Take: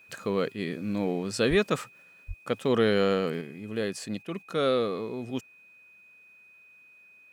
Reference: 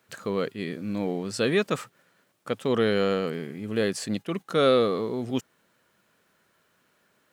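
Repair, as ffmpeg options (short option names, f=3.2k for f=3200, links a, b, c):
-filter_complex "[0:a]bandreject=f=2.5k:w=30,asplit=3[a][b][c];[a]afade=t=out:st=1.49:d=0.02[d];[b]highpass=f=140:w=0.5412,highpass=f=140:w=1.3066,afade=t=in:st=1.49:d=0.02,afade=t=out:st=1.61:d=0.02[e];[c]afade=t=in:st=1.61:d=0.02[f];[d][e][f]amix=inputs=3:normalize=0,asplit=3[g][h][i];[g]afade=t=out:st=2.27:d=0.02[j];[h]highpass=f=140:w=0.5412,highpass=f=140:w=1.3066,afade=t=in:st=2.27:d=0.02,afade=t=out:st=2.39:d=0.02[k];[i]afade=t=in:st=2.39:d=0.02[l];[j][k][l]amix=inputs=3:normalize=0,asetnsamples=n=441:p=0,asendcmd='3.41 volume volume 5dB',volume=0dB"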